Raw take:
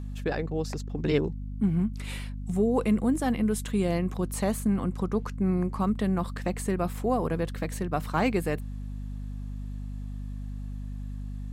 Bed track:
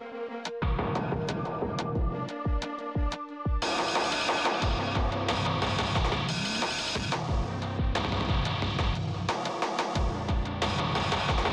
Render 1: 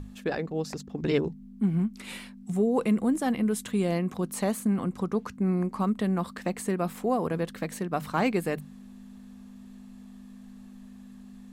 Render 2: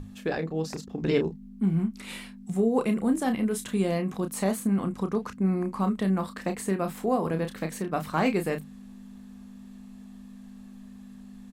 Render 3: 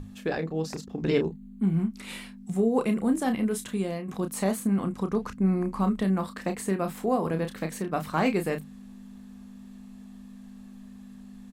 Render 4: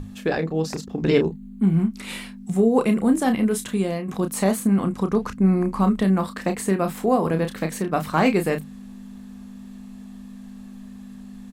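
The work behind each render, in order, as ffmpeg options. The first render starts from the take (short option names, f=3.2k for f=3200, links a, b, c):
-af "bandreject=f=50:t=h:w=6,bandreject=f=100:t=h:w=6,bandreject=f=150:t=h:w=6"
-filter_complex "[0:a]asplit=2[a][b];[b]adelay=31,volume=-7.5dB[c];[a][c]amix=inputs=2:normalize=0"
-filter_complex "[0:a]asettb=1/sr,asplit=3[a][b][c];[a]atrim=end=1.274[d];[b]atrim=start=1.27:end=1.74,asetpts=PTS-STARTPTS,afade=t=in:d=0.004:c=qsin,afade=t=out:st=0.466:d=0.004:c=qsin,asuperstop=centerf=5400:order=4:qfactor=3.7[e];[c]atrim=start=1.736[f];[d][e]acrossfade=d=0.004:c1=hsin:c2=qsin[g];[g][f]acrossfade=d=0.004:c1=qsin:c2=hsin,asettb=1/sr,asplit=3[h][i][j];[h]atrim=end=5.114[k];[i]atrim=start=5.11:end=6.04,asetpts=PTS-STARTPTS,afade=t=in:d=0.004:c=qsin,afade=t=out:st=0.926:d=0.004:c=qsin,lowshelf=f=65:g=12[l];[j]atrim=start=6.036[m];[k][l]acrossfade=d=0.004:c1=hsin:c2=qsin[n];[n][m]acrossfade=d=0.004:c1=qsin:c2=hsin,asplit=2[o][p];[o]atrim=end=4.08,asetpts=PTS-STARTPTS,afade=t=out:st=3.53:d=0.55:silence=0.375837[q];[p]atrim=start=4.08,asetpts=PTS-STARTPTS,afade=t=in:d=0.004:c=hsin:silence=0.375837[r];[q][r]concat=n=2:v=0:a=1"
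-af "volume=6dB"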